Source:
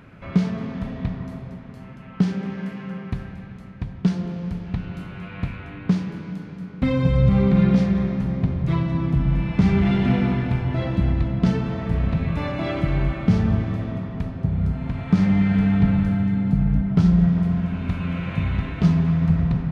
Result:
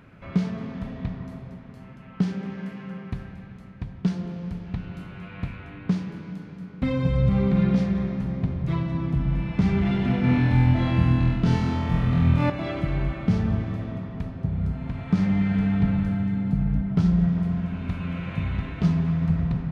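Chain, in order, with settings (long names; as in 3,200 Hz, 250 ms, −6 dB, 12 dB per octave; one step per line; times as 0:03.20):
0:10.21–0:12.50: flutter between parallel walls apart 4.1 metres, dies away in 1.3 s
level −4 dB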